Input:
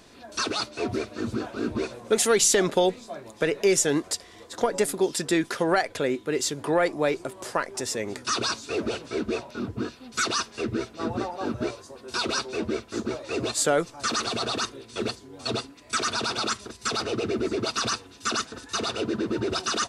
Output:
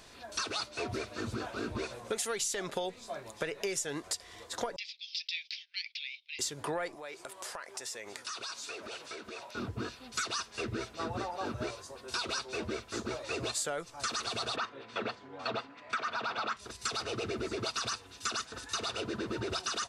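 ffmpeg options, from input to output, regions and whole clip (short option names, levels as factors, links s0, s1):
-filter_complex "[0:a]asettb=1/sr,asplit=3[s0][s1][s2];[s0]atrim=end=4.764[s3];[s1]atrim=start=4.76:end=6.39,asetpts=PTS-STARTPTS,afade=t=in:d=0.004:c=qsin,afade=t=out:st=1.626:d=0.004:c=qsin,asuperpass=centerf=3500:order=12:qfactor=1.1,agate=range=0.2:threshold=0.00178:ratio=16:release=100:detection=peak[s4];[s2]atrim=start=6.386[s5];[s3][s4]acrossfade=d=0.004:c1=hsin:c2=qsin[s6];[s6][s5]acrossfade=d=0.004:c1=qsin:c2=hsin,asettb=1/sr,asplit=3[s7][s8][s9];[s7]atrim=end=6.954[s10];[s8]atrim=start=6.95:end=9.55,asetpts=PTS-STARTPTS,afade=t=in:d=0.004:c=qsin,afade=t=out:st=2.596:d=0.004:c=qsin,highpass=f=610:p=1,acompressor=threshold=0.0158:ratio=8:attack=3.2:release=140:knee=1:detection=peak[s11];[s9]atrim=start=9.546[s12];[s10][s11]acrossfade=d=0.004:c1=hsin:c2=qsin[s13];[s13][s12]acrossfade=d=0.004:c1=qsin:c2=hsin,asettb=1/sr,asplit=3[s14][s15][s16];[s14]atrim=end=14.564[s17];[s15]atrim=start=14.56:end=16.57,asetpts=PTS-STARTPTS,afade=t=in:d=0.004:c=qsin,afade=t=out:st=2.006:d=0.004:c=qsin,equalizer=f=370:w=2.6:g=-7.5,acontrast=56,highpass=210,lowpass=2100[s18];[s16]atrim=start=16.566[s19];[s17][s18]acrossfade=d=0.004:c1=hsin:c2=qsin[s20];[s20][s19]acrossfade=d=0.004:c1=qsin:c2=hsin,equalizer=f=260:t=o:w=1.8:g=-8.5,acompressor=threshold=0.0251:ratio=6"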